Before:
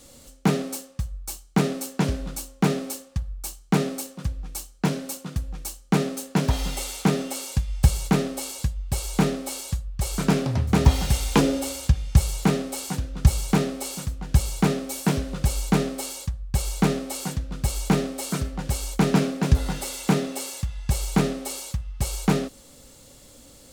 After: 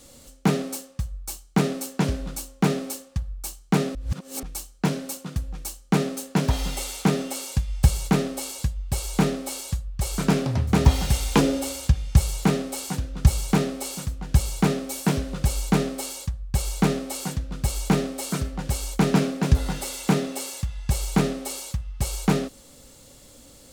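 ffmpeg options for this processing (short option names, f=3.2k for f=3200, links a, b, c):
-filter_complex "[0:a]asplit=3[a][b][c];[a]atrim=end=3.952[d];[b]atrim=start=3.948:end=4.432,asetpts=PTS-STARTPTS,areverse[e];[c]atrim=start=4.428[f];[d][e]acrossfade=d=0.004:c1=hsin:c2=hsin[g];[g][f]acrossfade=d=0.004:c1=hsin:c2=hsin"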